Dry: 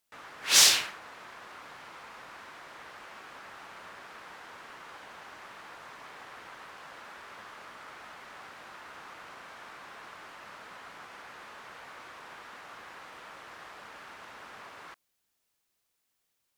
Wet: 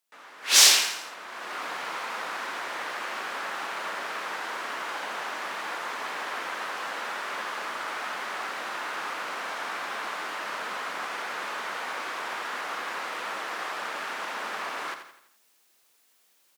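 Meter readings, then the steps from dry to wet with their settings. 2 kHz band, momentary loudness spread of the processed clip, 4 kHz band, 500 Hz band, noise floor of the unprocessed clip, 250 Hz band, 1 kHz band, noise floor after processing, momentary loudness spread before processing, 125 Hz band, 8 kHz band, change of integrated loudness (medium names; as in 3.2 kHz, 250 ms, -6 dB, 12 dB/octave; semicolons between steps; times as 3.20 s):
+9.0 dB, 1 LU, +4.0 dB, +11.0 dB, -79 dBFS, +8.5 dB, +12.0 dB, -65 dBFS, 21 LU, no reading, +3.5 dB, -7.0 dB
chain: Bessel high-pass 280 Hz, order 8; feedback delay 84 ms, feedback 46%, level -9 dB; level rider gain up to 15 dB; trim -1.5 dB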